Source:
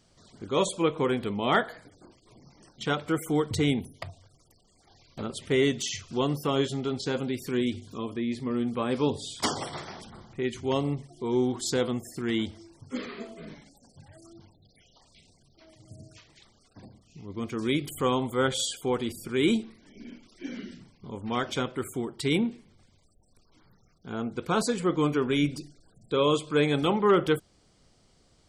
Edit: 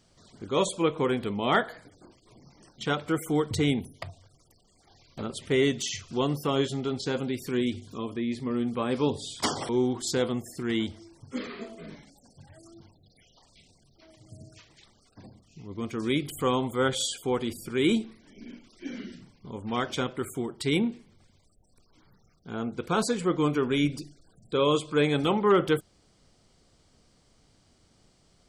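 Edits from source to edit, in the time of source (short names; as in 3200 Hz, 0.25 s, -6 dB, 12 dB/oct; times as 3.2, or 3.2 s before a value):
9.69–11.28 cut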